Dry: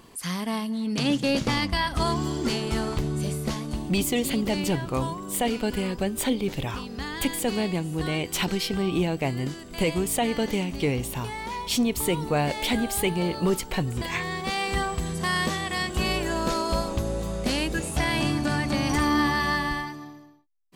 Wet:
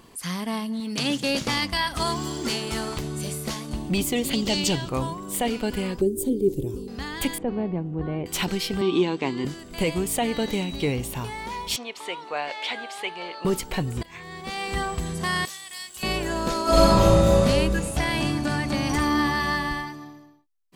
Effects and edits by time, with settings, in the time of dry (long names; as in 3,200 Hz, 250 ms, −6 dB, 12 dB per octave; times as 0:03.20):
0:00.80–0:03.70: spectral tilt +1.5 dB per octave
0:04.33–0:04.89: flat-topped bell 4,700 Hz +10 dB
0:06.01–0:06.88: drawn EQ curve 250 Hz 0 dB, 370 Hz +13 dB, 670 Hz −17 dB, 1,800 Hz −30 dB, 5,100 Hz −12 dB, 9,200 Hz 0 dB
0:07.38–0:08.26: Bessel low-pass filter 830 Hz
0:08.81–0:09.45: loudspeaker in its box 210–7,200 Hz, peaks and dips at 250 Hz +5 dB, 370 Hz +7 dB, 640 Hz −9 dB, 1,000 Hz +9 dB, 3,600 Hz +8 dB
0:10.33–0:10.91: steady tone 3,900 Hz −39 dBFS
0:11.76–0:13.45: band-pass filter 730–4,100 Hz
0:14.03–0:14.88: fade in, from −20.5 dB
0:15.45–0:16.03: first-order pre-emphasis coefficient 0.97
0:16.63–0:17.42: thrown reverb, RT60 1.6 s, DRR −11.5 dB